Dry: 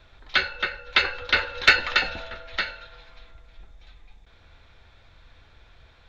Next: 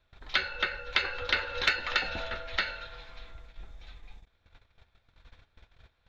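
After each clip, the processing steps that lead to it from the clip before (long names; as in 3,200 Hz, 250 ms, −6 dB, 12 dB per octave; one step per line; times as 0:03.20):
noise gate −49 dBFS, range −19 dB
downward compressor 4 to 1, threshold −27 dBFS, peak gain reduction 14 dB
level +1.5 dB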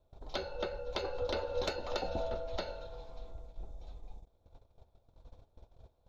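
drawn EQ curve 210 Hz 0 dB, 600 Hz +5 dB, 930 Hz −2 dB, 1,800 Hz −24 dB, 6,200 Hz −5 dB
level +1 dB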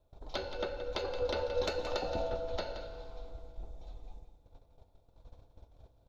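single-tap delay 174 ms −10.5 dB
feedback delay network reverb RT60 2.1 s, low-frequency decay 1.25×, high-frequency decay 0.9×, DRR 11 dB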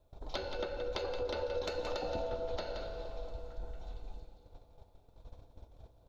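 downward compressor, threshold −36 dBFS, peak gain reduction 9 dB
on a send: echo through a band-pass that steps 230 ms, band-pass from 310 Hz, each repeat 0.7 octaves, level −7 dB
on the sum: level +2.5 dB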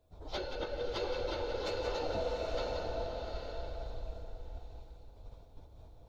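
random phases in long frames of 50 ms
slow-attack reverb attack 800 ms, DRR 2.5 dB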